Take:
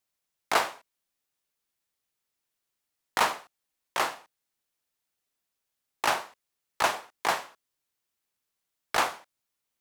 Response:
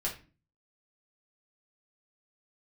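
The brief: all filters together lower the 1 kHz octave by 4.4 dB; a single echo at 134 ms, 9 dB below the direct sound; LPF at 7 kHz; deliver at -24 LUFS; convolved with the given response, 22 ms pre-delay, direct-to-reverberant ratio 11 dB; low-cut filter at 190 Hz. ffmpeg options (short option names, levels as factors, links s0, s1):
-filter_complex "[0:a]highpass=190,lowpass=7000,equalizer=f=1000:t=o:g=-5.5,aecho=1:1:134:0.355,asplit=2[s0][s1];[1:a]atrim=start_sample=2205,adelay=22[s2];[s1][s2]afir=irnorm=-1:irlink=0,volume=0.188[s3];[s0][s3]amix=inputs=2:normalize=0,volume=2.37"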